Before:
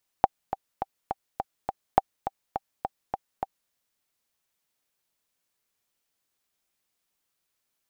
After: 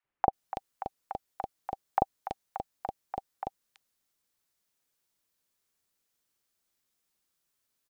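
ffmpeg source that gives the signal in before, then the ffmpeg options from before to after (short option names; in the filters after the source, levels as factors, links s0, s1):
-f lavfi -i "aevalsrc='pow(10,(-3.5-11*gte(mod(t,6*60/207),60/207))/20)*sin(2*PI*781*mod(t,60/207))*exp(-6.91*mod(t,60/207)/0.03)':d=3.47:s=44100"
-filter_complex "[0:a]acrossover=split=770|2500[s0][s1][s2];[s0]adelay=40[s3];[s2]adelay=330[s4];[s3][s1][s4]amix=inputs=3:normalize=0"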